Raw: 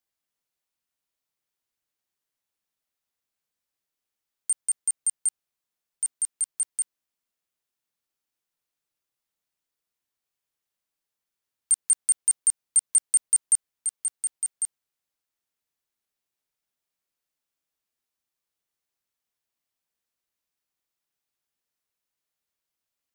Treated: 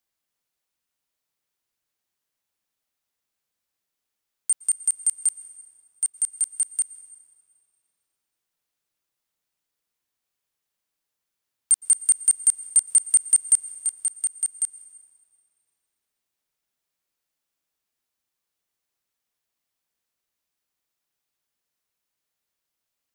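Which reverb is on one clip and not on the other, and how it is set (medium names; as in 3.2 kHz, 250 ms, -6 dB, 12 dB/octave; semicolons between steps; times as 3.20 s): plate-style reverb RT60 2.5 s, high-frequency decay 0.65×, pre-delay 105 ms, DRR 15 dB; trim +3 dB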